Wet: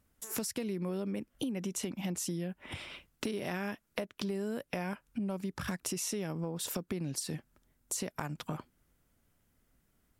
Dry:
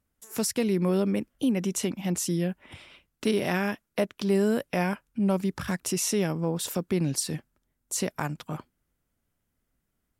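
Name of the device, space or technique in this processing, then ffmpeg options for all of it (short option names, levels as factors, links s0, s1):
serial compression, peaks first: -af "acompressor=threshold=0.0178:ratio=5,acompressor=threshold=0.00501:ratio=1.5,volume=1.88"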